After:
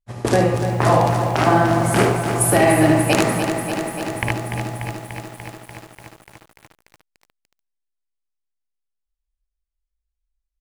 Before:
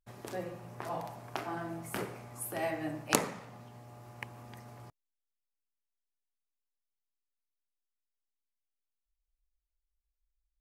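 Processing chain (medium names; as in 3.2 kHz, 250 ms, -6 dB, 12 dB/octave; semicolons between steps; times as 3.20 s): steep low-pass 11 kHz 36 dB/octave; de-hum 136 Hz, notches 2; expander -38 dBFS; bass shelf 170 Hz +8.5 dB; compression 4:1, threshold -43 dBFS, peak gain reduction 19.5 dB; hard clipper -24.5 dBFS, distortion -27 dB; early reflections 56 ms -9.5 dB, 75 ms -6.5 dB; loudness maximiser +33 dB; bit-crushed delay 293 ms, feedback 80%, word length 6-bit, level -8.5 dB; trim -4 dB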